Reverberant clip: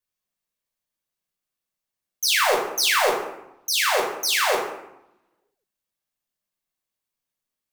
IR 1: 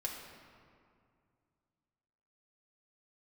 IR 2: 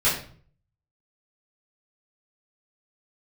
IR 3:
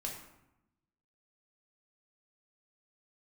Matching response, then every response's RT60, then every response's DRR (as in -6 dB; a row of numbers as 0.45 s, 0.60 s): 3; 2.3 s, 0.50 s, 0.85 s; -1.0 dB, -11.0 dB, -1.0 dB